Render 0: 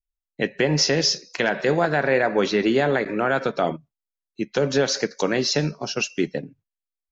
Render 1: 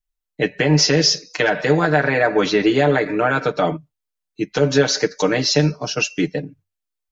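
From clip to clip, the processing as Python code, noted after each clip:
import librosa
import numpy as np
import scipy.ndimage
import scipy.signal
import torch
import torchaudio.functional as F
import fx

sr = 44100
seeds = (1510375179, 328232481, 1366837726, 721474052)

y = fx.peak_eq(x, sr, hz=94.0, db=9.5, octaves=0.23)
y = y + 0.93 * np.pad(y, (int(6.6 * sr / 1000.0), 0))[:len(y)]
y = y * 10.0 ** (1.5 / 20.0)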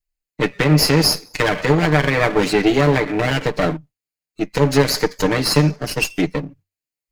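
y = fx.lower_of_two(x, sr, delay_ms=0.42)
y = y * 10.0 ** (1.5 / 20.0)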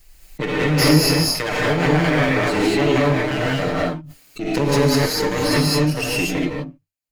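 y = fx.rev_gated(x, sr, seeds[0], gate_ms=260, shape='rising', drr_db=-5.0)
y = fx.pre_swell(y, sr, db_per_s=34.0)
y = y * 10.0 ** (-8.0 / 20.0)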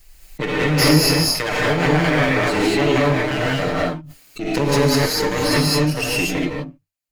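y = fx.peak_eq(x, sr, hz=220.0, db=-2.0, octaves=2.7)
y = y * 10.0 ** (1.5 / 20.0)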